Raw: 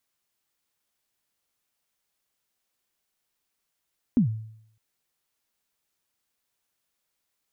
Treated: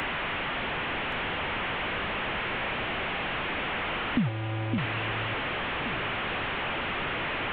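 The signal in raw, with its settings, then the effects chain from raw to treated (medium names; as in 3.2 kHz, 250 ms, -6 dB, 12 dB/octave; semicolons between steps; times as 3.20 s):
kick drum length 0.61 s, from 270 Hz, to 110 Hz, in 109 ms, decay 0.69 s, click off, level -14 dB
one-bit delta coder 16 kbps, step -24.5 dBFS; echo whose repeats swap between lows and highs 562 ms, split 830 Hz, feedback 51%, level -6 dB; three bands compressed up and down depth 40%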